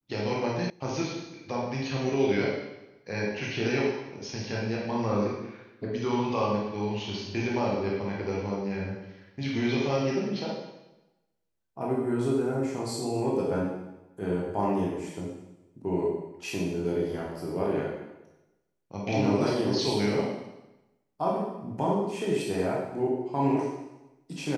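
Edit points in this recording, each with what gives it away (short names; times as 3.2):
0.7 sound cut off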